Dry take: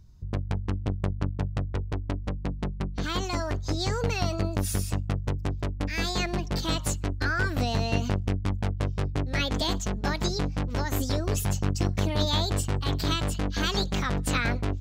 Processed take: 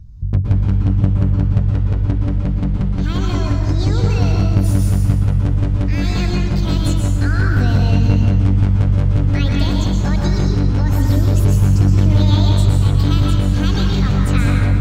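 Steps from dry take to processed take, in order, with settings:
bass and treble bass +15 dB, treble −2 dB
convolution reverb RT60 1.3 s, pre-delay 108 ms, DRR −0.5 dB

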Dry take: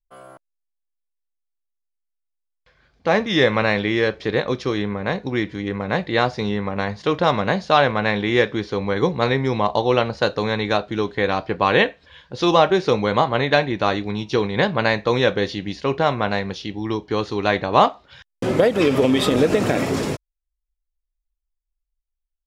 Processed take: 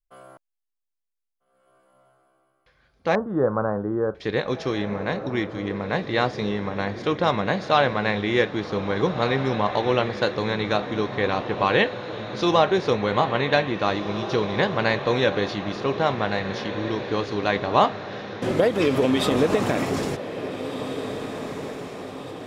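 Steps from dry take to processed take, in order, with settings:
0:03.15–0:04.15: elliptic low-pass filter 1,400 Hz, stop band 40 dB
feedback delay with all-pass diffusion 1,756 ms, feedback 53%, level −10 dB
level −3.5 dB

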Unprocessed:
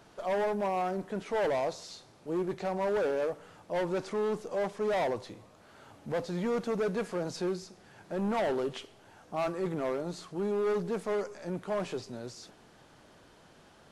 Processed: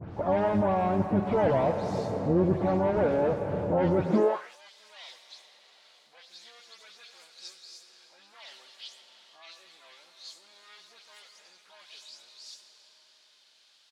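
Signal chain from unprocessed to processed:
every frequency bin delayed by itself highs late, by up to 167 ms
on a send at −8 dB: convolution reverb RT60 5.3 s, pre-delay 57 ms
on the sum: dynamic equaliser 250 Hz, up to −5 dB, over −42 dBFS, Q 0.78
in parallel at +2.5 dB: downward compressor 8 to 1, threshold −40 dBFS, peak gain reduction 13 dB
on the sum: spectral tilt −4 dB per octave
pitch-shifted copies added −12 semitones −15 dB, +7 semitones −11 dB
high-pass filter sweep 92 Hz → 4,000 Hz, 0:04.03–0:04.57

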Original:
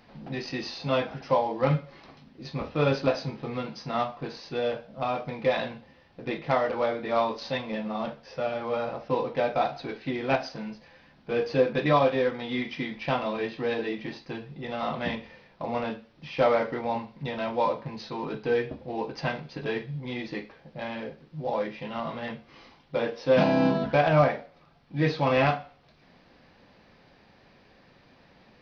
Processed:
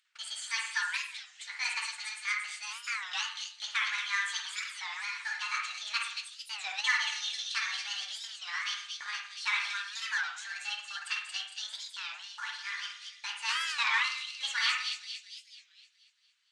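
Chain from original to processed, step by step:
high-pass filter 1,100 Hz 24 dB per octave
noise gate −53 dBFS, range −60 dB
high-shelf EQ 3,800 Hz −11 dB
upward compression, threshold −48 dBFS
on a send: echo with a time of its own for lows and highs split 1,700 Hz, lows 92 ms, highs 397 ms, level −3 dB
on the sum: spring reverb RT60 1.5 s, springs 43 ms, DRR 18.5 dB
wrong playback speed 45 rpm record played at 78 rpm
wow of a warped record 33 1/3 rpm, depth 250 cents
level +2.5 dB

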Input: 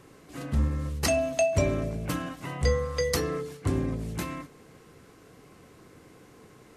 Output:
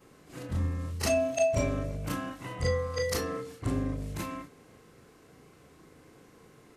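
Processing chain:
every overlapping window played backwards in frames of 76 ms

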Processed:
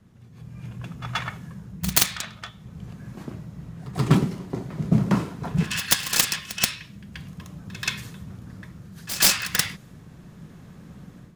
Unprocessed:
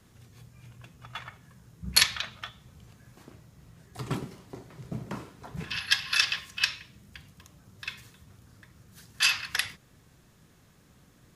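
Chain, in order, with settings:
phase distortion by the signal itself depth 0.54 ms
parametric band 180 Hz +8.5 dB 0.86 octaves
automatic gain control gain up to 12.5 dB
echo ahead of the sound 130 ms −14 dB
one half of a high-frequency compander decoder only
level −1 dB

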